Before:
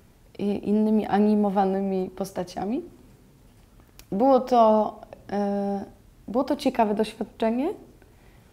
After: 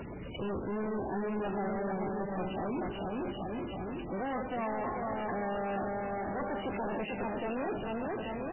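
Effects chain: bin magnitudes rounded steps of 30 dB; HPF 41 Hz 12 dB/oct; high shelf 2100 Hz +11 dB; reverse; compressor 6:1, threshold -31 dBFS, peak gain reduction 17 dB; reverse; soft clip -32.5 dBFS, distortion -11 dB; on a send: bouncing-ball echo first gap 0.44 s, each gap 0.9×, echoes 5; on the sum: power-law curve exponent 0.35; gain -3.5 dB; MP3 8 kbps 12000 Hz

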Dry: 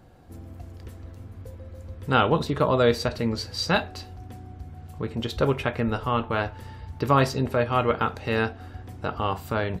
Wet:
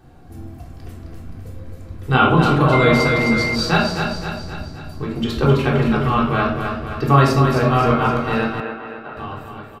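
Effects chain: ending faded out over 1.97 s; bell 470 Hz -3.5 dB 0.28 oct; feedback echo 0.262 s, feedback 54%, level -6 dB; shoebox room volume 980 m³, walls furnished, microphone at 3.6 m; 2.72–3.54 whine 2100 Hz -21 dBFS; 8.6–9.17 three-band isolator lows -19 dB, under 230 Hz, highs -18 dB, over 3200 Hz; gain +1 dB

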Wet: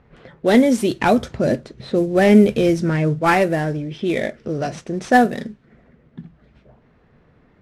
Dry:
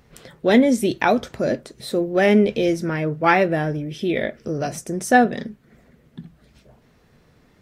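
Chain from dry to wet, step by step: CVSD 64 kbps; low-pass opened by the level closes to 2100 Hz, open at -15.5 dBFS; 0.99–3.19 bell 88 Hz +8 dB 2.5 oct; gain +1.5 dB

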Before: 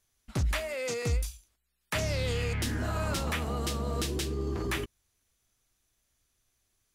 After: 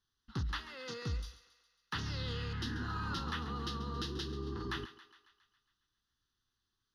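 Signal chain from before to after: LPF 5600 Hz 12 dB/oct; low shelf 110 Hz -8.5 dB; fixed phaser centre 2300 Hz, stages 6; thinning echo 0.137 s, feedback 60%, high-pass 430 Hz, level -14 dB; gain -2.5 dB

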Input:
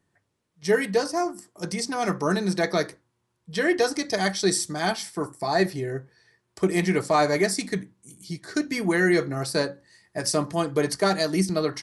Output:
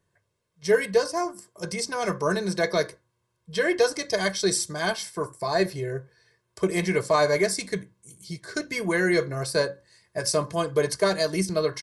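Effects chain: comb 1.9 ms, depth 61%; gain -1.5 dB

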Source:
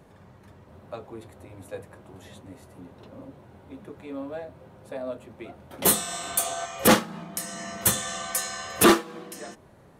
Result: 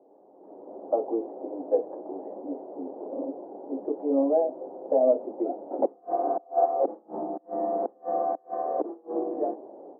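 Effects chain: flipped gate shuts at -19 dBFS, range -33 dB; elliptic band-pass 290–790 Hz, stop band 70 dB; AGC gain up to 14 dB

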